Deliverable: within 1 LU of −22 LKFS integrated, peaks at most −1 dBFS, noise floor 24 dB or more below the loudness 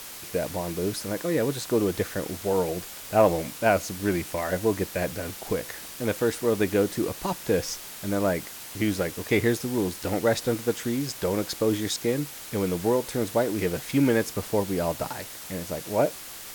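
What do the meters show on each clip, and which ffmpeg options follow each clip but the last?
background noise floor −41 dBFS; target noise floor −51 dBFS; integrated loudness −27.0 LKFS; sample peak −7.0 dBFS; target loudness −22.0 LKFS
→ -af "afftdn=noise_reduction=10:noise_floor=-41"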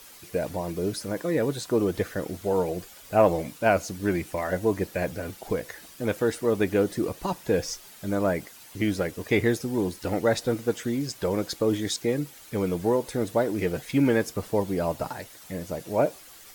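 background noise floor −49 dBFS; target noise floor −51 dBFS
→ -af "afftdn=noise_reduction=6:noise_floor=-49"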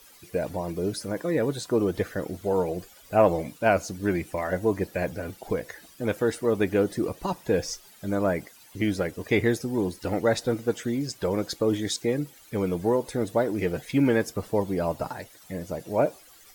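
background noise floor −53 dBFS; integrated loudness −27.0 LKFS; sample peak −7.5 dBFS; target loudness −22.0 LKFS
→ -af "volume=5dB"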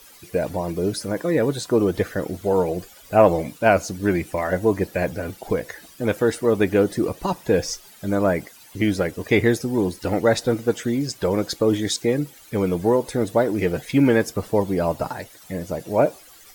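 integrated loudness −22.0 LKFS; sample peak −2.5 dBFS; background noise floor −48 dBFS

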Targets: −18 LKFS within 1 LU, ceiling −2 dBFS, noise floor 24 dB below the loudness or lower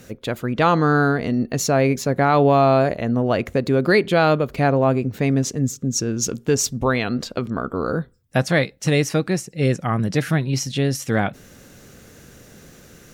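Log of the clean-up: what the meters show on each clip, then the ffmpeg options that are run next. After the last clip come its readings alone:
integrated loudness −20.0 LKFS; sample peak −5.5 dBFS; target loudness −18.0 LKFS
→ -af "volume=2dB"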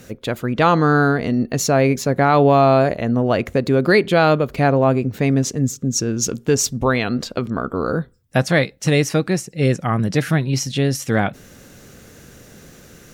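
integrated loudness −18.0 LKFS; sample peak −3.5 dBFS; background noise floor −46 dBFS

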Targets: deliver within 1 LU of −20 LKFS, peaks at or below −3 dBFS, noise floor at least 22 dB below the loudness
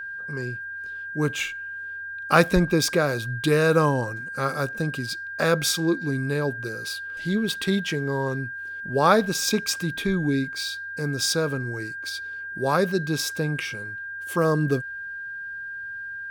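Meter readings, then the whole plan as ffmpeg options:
interfering tone 1,600 Hz; level of the tone −32 dBFS; integrated loudness −25.0 LKFS; sample peak −3.0 dBFS; target loudness −20.0 LKFS
→ -af "bandreject=frequency=1600:width=30"
-af "volume=5dB,alimiter=limit=-3dB:level=0:latency=1"

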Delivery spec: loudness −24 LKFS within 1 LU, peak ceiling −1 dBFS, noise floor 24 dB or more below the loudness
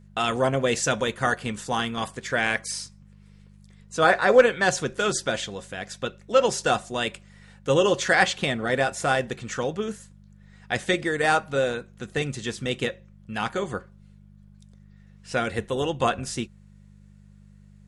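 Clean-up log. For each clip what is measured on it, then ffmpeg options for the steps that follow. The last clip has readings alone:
mains hum 50 Hz; hum harmonics up to 200 Hz; level of the hum −48 dBFS; integrated loudness −25.0 LKFS; sample peak −4.5 dBFS; target loudness −24.0 LKFS
→ -af "bandreject=frequency=50:width_type=h:width=4,bandreject=frequency=100:width_type=h:width=4,bandreject=frequency=150:width_type=h:width=4,bandreject=frequency=200:width_type=h:width=4"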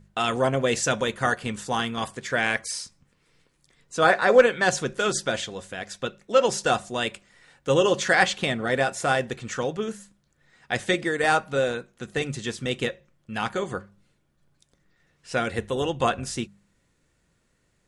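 mains hum none found; integrated loudness −25.0 LKFS; sample peak −4.5 dBFS; target loudness −24.0 LKFS
→ -af "volume=1dB"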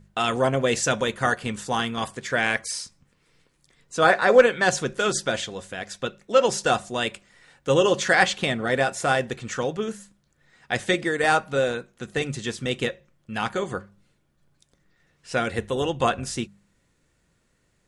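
integrated loudness −24.0 LKFS; sample peak −3.5 dBFS; background noise floor −68 dBFS

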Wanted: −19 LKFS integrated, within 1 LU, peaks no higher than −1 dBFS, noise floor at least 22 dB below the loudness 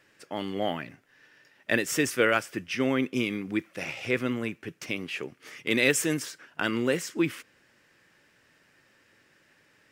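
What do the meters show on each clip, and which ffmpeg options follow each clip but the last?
integrated loudness −28.5 LKFS; sample peak −7.5 dBFS; target loudness −19.0 LKFS
→ -af "volume=9.5dB,alimiter=limit=-1dB:level=0:latency=1"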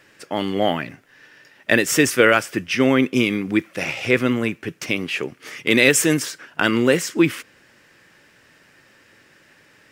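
integrated loudness −19.5 LKFS; sample peak −1.0 dBFS; background noise floor −55 dBFS

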